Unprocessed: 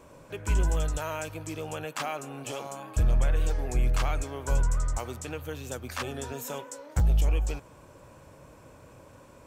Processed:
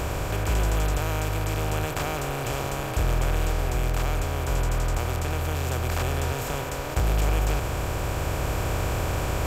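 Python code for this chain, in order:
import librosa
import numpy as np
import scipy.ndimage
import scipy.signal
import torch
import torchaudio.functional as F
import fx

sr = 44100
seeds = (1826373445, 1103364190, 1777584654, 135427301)

y = fx.bin_compress(x, sr, power=0.2)
y = fx.rider(y, sr, range_db=10, speed_s=2.0)
y = y * librosa.db_to_amplitude(-4.0)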